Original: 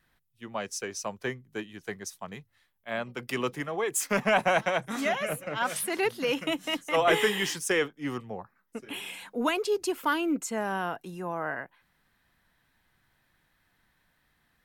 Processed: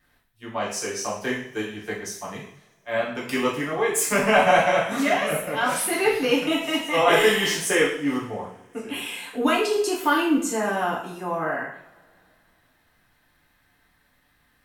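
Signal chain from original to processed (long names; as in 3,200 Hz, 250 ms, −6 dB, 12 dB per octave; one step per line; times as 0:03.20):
0:01.21–0:01.72: high-shelf EQ 5,100 Hz +7 dB
coupled-rooms reverb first 0.56 s, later 2.9 s, from −28 dB, DRR −5.5 dB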